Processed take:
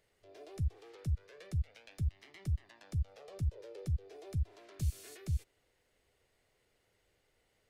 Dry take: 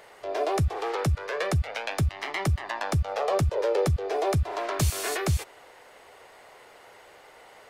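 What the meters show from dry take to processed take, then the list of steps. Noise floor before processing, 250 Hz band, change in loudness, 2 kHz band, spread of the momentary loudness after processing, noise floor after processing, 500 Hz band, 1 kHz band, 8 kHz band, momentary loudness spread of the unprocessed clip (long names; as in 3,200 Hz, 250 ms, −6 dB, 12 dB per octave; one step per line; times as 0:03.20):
−52 dBFS, −15.0 dB, −12.0 dB, −25.5 dB, 5 LU, −76 dBFS, −24.5 dB, −31.0 dB, −19.5 dB, 5 LU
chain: guitar amp tone stack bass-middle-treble 10-0-1
level +1 dB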